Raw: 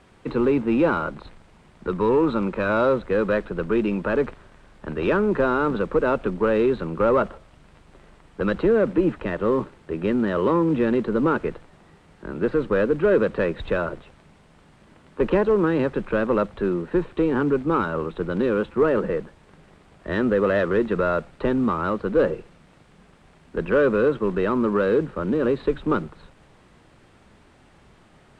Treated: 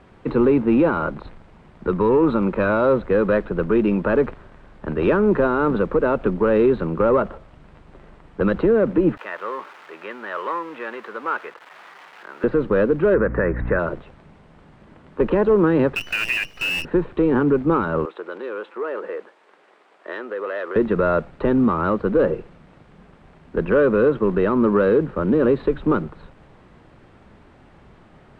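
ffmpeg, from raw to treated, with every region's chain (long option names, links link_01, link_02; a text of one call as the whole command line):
ffmpeg -i in.wav -filter_complex "[0:a]asettb=1/sr,asplit=3[link_01][link_02][link_03];[link_01]atrim=end=9.174[link_04];[link_02]atrim=start=9.17:end=12.44,asetpts=PTS-STARTPTS,afade=type=in:duration=0.004:curve=qsin,afade=type=out:start_time=3.266:duration=0.004:curve=qsin,aeval=exprs='val(0)+0.5*0.0178*sgn(val(0))':channel_layout=same,highpass=1100,acrossover=split=3400[link_05][link_06];[link_06]acompressor=threshold=-53dB:ratio=4:attack=1:release=60[link_07];[link_05][link_07]amix=inputs=2:normalize=0[link_08];[link_03]atrim=start=12.436[link_09];[link_04][link_08]acrossfade=duration=0.004:curve1=hsin:curve2=qsin[link_10];[link_10][link_09]acrossfade=duration=0.004:curve1=qsin:curve2=hsin,asettb=1/sr,asplit=3[link_11][link_12][link_13];[link_11]atrim=end=13.144[link_14];[link_12]atrim=start=13.14:end=13.79,asetpts=PTS-STARTPTS,afade=type=in:duration=0.004:curve=qsin,afade=type=out:start_time=0.646:duration=0.004:curve=qsin,highshelf=frequency=2500:width_type=q:width=3:gain=-11,aeval=exprs='val(0)+0.0316*(sin(2*PI*60*n/s)+sin(2*PI*2*60*n/s)/2+sin(2*PI*3*60*n/s)/3+sin(2*PI*4*60*n/s)/4+sin(2*PI*5*60*n/s)/5)':channel_layout=same[link_15];[link_13]atrim=start=13.786[link_16];[link_14][link_15]acrossfade=duration=0.004:curve1=hsin:curve2=qsin[link_17];[link_17][link_16]acrossfade=duration=0.004:curve1=qsin:curve2=hsin,asettb=1/sr,asplit=3[link_18][link_19][link_20];[link_18]atrim=end=15.954[link_21];[link_19]atrim=start=15.95:end=16.85,asetpts=PTS-STARTPTS,afade=type=in:duration=0.004:curve=qsin,afade=type=out:start_time=0.896:duration=0.004:curve=qsin,lowpass=frequency=2600:width_type=q:width=0.5098,lowpass=frequency=2600:width_type=q:width=0.6013,lowpass=frequency=2600:width_type=q:width=0.9,lowpass=frequency=2600:width_type=q:width=2.563,afreqshift=-3000,acrusher=bits=5:dc=4:mix=0:aa=0.000001[link_22];[link_20]atrim=start=16.846[link_23];[link_21][link_22]acrossfade=duration=0.004:curve1=hsin:curve2=qsin[link_24];[link_24][link_23]acrossfade=duration=0.004:curve1=qsin:curve2=hsin,asettb=1/sr,asplit=3[link_25][link_26][link_27];[link_25]atrim=end=18.054[link_28];[link_26]atrim=start=18.05:end=20.76,asetpts=PTS-STARTPTS,afade=type=in:duration=0.004:curve=qsin,afade=type=out:start_time=2.706:duration=0.004:curve=qsin,equalizer=frequency=530:width=1:gain=-4.5,acompressor=threshold=-27dB:ratio=3:attack=3.2:release=140:knee=1:detection=peak,highpass=frequency=400:width=0.5412,highpass=frequency=400:width=1.3066[link_29];[link_27]atrim=start=20.756[link_30];[link_28][link_29]acrossfade=duration=0.004:curve1=hsin:curve2=qsin[link_31];[link_31][link_30]acrossfade=duration=0.004:curve1=qsin:curve2=hsin,alimiter=limit=-13.5dB:level=0:latency=1:release=115,lowpass=frequency=1800:poles=1,volume=5dB" out.wav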